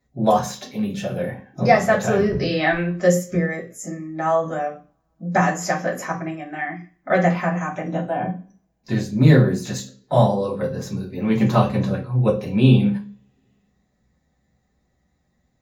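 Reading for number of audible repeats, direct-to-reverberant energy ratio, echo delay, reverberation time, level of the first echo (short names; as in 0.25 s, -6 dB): none, -6.0 dB, none, 0.40 s, none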